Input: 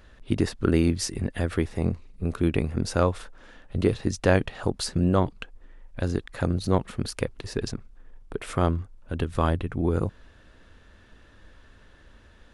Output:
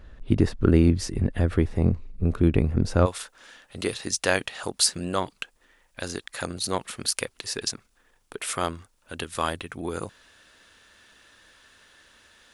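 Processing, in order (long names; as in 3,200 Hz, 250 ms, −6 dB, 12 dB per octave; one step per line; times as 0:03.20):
spectral tilt −1.5 dB per octave, from 0:03.05 +4 dB per octave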